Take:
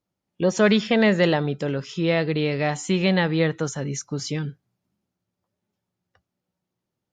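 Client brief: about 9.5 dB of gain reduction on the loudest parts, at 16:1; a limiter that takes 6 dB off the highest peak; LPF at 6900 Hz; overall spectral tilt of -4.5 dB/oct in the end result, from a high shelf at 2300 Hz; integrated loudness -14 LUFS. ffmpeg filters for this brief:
-af "lowpass=6.9k,highshelf=f=2.3k:g=5.5,acompressor=threshold=-22dB:ratio=16,volume=15.5dB,alimiter=limit=-3.5dB:level=0:latency=1"

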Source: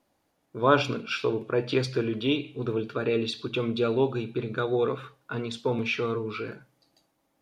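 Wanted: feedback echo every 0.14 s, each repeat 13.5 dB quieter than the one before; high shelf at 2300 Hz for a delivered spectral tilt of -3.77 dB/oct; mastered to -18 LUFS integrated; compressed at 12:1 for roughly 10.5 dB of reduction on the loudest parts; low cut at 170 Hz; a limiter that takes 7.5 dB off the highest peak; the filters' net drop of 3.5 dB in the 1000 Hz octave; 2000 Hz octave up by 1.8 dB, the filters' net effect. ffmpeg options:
-af "highpass=170,equalizer=f=1k:t=o:g=-6.5,equalizer=f=2k:t=o:g=8.5,highshelf=f=2.3k:g=-5.5,acompressor=threshold=-26dB:ratio=12,alimiter=limit=-23.5dB:level=0:latency=1,aecho=1:1:140|280:0.211|0.0444,volume=16dB"

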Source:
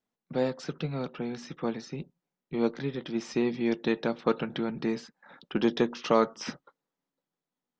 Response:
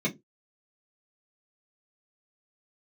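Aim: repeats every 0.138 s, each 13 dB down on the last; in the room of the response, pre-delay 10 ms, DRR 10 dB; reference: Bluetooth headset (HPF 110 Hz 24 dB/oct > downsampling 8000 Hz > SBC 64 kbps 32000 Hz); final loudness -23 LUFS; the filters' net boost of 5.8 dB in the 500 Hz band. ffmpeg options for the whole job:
-filter_complex "[0:a]equalizer=f=500:t=o:g=7,aecho=1:1:138|276|414:0.224|0.0493|0.0108,asplit=2[a][b];[1:a]atrim=start_sample=2205,adelay=10[c];[b][c]afir=irnorm=-1:irlink=0,volume=-18.5dB[d];[a][d]amix=inputs=2:normalize=0,highpass=f=110:w=0.5412,highpass=f=110:w=1.3066,aresample=8000,aresample=44100,volume=1.5dB" -ar 32000 -c:a sbc -b:a 64k

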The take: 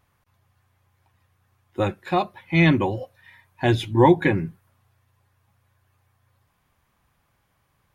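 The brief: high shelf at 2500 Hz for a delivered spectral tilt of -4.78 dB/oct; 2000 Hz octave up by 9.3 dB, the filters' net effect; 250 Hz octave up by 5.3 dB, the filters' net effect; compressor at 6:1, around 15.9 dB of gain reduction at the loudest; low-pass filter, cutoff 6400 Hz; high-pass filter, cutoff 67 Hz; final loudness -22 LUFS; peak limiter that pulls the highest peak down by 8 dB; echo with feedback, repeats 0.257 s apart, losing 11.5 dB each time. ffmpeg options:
-af "highpass=67,lowpass=6.4k,equalizer=f=250:t=o:g=8,equalizer=f=2k:t=o:g=9,highshelf=f=2.5k:g=4,acompressor=threshold=-24dB:ratio=6,alimiter=limit=-17.5dB:level=0:latency=1,aecho=1:1:257|514|771:0.266|0.0718|0.0194,volume=9dB"

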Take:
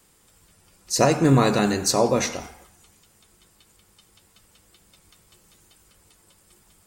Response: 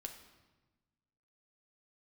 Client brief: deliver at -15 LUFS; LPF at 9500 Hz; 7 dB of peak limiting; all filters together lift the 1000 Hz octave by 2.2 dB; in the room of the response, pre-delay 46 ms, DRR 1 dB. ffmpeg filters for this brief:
-filter_complex "[0:a]lowpass=9.5k,equalizer=f=1k:t=o:g=3,alimiter=limit=-11.5dB:level=0:latency=1,asplit=2[a][b];[1:a]atrim=start_sample=2205,adelay=46[c];[b][c]afir=irnorm=-1:irlink=0,volume=2.5dB[d];[a][d]amix=inputs=2:normalize=0,volume=5.5dB"

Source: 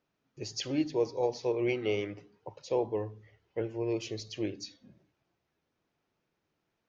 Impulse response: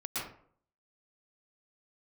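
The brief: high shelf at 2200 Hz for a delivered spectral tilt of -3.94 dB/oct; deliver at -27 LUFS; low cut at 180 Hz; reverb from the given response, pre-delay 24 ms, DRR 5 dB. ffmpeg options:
-filter_complex "[0:a]highpass=180,highshelf=f=2.2k:g=3.5,asplit=2[a][b];[1:a]atrim=start_sample=2205,adelay=24[c];[b][c]afir=irnorm=-1:irlink=0,volume=-9dB[d];[a][d]amix=inputs=2:normalize=0,volume=6dB"

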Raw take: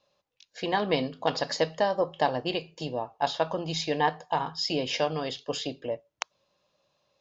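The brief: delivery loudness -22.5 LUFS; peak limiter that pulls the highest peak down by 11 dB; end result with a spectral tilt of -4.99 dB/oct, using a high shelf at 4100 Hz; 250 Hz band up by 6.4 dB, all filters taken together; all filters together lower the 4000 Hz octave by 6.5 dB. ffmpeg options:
-af "equalizer=f=250:t=o:g=8.5,equalizer=f=4k:t=o:g=-4,highshelf=f=4.1k:g=-8,volume=9.5dB,alimiter=limit=-10.5dB:level=0:latency=1"

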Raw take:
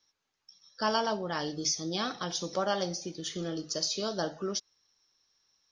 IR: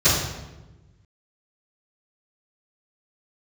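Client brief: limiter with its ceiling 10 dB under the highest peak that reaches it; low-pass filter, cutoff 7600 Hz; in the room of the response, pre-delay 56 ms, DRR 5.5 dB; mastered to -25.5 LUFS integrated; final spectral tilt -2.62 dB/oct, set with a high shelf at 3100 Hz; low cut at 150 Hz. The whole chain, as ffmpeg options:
-filter_complex "[0:a]highpass=150,lowpass=7.6k,highshelf=f=3.1k:g=8.5,alimiter=limit=-20.5dB:level=0:latency=1,asplit=2[a][b];[1:a]atrim=start_sample=2205,adelay=56[c];[b][c]afir=irnorm=-1:irlink=0,volume=-25dB[d];[a][d]amix=inputs=2:normalize=0,volume=5dB"

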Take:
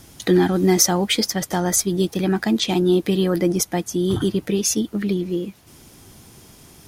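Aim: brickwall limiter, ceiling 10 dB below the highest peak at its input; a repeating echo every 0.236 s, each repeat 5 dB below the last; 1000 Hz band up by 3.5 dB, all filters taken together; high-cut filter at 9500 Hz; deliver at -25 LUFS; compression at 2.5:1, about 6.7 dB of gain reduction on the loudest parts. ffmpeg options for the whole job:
-af "lowpass=9.5k,equalizer=f=1k:t=o:g=5,acompressor=threshold=-21dB:ratio=2.5,alimiter=limit=-19dB:level=0:latency=1,aecho=1:1:236|472|708|944|1180|1416|1652:0.562|0.315|0.176|0.0988|0.0553|0.031|0.0173,volume=1.5dB"

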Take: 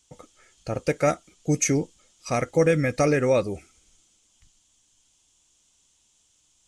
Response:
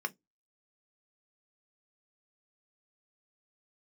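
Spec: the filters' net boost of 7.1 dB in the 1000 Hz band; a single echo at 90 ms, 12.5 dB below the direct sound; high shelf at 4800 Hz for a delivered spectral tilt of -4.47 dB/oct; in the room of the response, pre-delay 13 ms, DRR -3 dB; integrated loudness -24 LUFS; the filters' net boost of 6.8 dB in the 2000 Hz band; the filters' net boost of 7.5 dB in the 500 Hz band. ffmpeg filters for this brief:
-filter_complex "[0:a]equalizer=f=500:t=o:g=6.5,equalizer=f=1k:t=o:g=6,equalizer=f=2k:t=o:g=5,highshelf=f=4.8k:g=7.5,aecho=1:1:90:0.237,asplit=2[a][b];[1:a]atrim=start_sample=2205,adelay=13[c];[b][c]afir=irnorm=-1:irlink=0,volume=-0.5dB[d];[a][d]amix=inputs=2:normalize=0,volume=-10dB"

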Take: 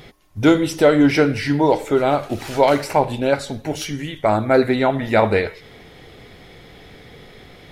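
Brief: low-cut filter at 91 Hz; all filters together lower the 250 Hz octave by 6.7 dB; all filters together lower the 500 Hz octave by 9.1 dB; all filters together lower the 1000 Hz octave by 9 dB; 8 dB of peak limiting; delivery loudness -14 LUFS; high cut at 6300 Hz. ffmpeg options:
-af "highpass=91,lowpass=6.3k,equalizer=f=250:t=o:g=-5,equalizer=f=500:t=o:g=-7.5,equalizer=f=1k:t=o:g=-9,volume=13.5dB,alimiter=limit=-3dB:level=0:latency=1"

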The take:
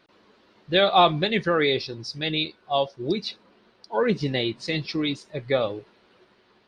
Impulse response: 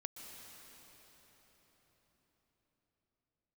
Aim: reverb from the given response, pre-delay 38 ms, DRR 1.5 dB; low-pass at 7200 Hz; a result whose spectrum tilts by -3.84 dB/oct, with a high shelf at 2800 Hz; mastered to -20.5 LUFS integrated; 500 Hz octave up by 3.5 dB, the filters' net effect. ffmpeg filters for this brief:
-filter_complex "[0:a]lowpass=7.2k,equalizer=f=500:t=o:g=4.5,highshelf=f=2.8k:g=-5.5,asplit=2[a][b];[1:a]atrim=start_sample=2205,adelay=38[c];[b][c]afir=irnorm=-1:irlink=0,volume=1.5dB[d];[a][d]amix=inputs=2:normalize=0,volume=0.5dB"

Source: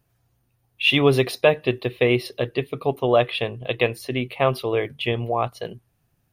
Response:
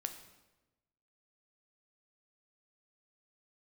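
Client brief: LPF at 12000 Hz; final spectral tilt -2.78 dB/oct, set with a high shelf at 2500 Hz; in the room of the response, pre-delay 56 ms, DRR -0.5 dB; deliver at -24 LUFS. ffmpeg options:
-filter_complex "[0:a]lowpass=12k,highshelf=f=2.5k:g=7.5,asplit=2[a][b];[1:a]atrim=start_sample=2205,adelay=56[c];[b][c]afir=irnorm=-1:irlink=0,volume=1.5dB[d];[a][d]amix=inputs=2:normalize=0,volume=-6.5dB"

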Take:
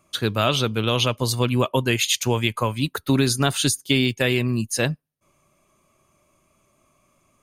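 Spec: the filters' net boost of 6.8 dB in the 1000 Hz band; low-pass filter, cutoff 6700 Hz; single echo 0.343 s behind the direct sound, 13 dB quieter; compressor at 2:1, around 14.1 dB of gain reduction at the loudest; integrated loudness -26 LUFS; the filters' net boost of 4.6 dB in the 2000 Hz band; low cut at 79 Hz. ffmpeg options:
-af "highpass=79,lowpass=6.7k,equalizer=f=1k:t=o:g=7,equalizer=f=2k:t=o:g=4.5,acompressor=threshold=-40dB:ratio=2,aecho=1:1:343:0.224,volume=7dB"

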